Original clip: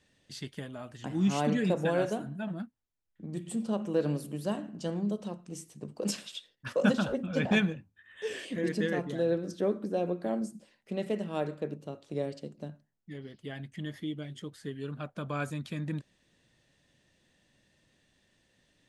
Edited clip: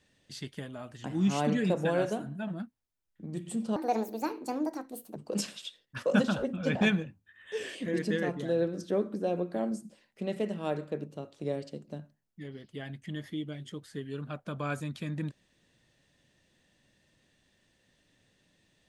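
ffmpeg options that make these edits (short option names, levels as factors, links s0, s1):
-filter_complex "[0:a]asplit=3[s0][s1][s2];[s0]atrim=end=3.764[s3];[s1]atrim=start=3.76:end=5.86,asetpts=PTS-STARTPTS,asetrate=66150,aresample=44100[s4];[s2]atrim=start=5.856[s5];[s3][s4]acrossfade=d=0.004:c1=hsin:c2=hsin[s6];[s6][s5]acrossfade=d=0.004:c1=hsin:c2=hsin"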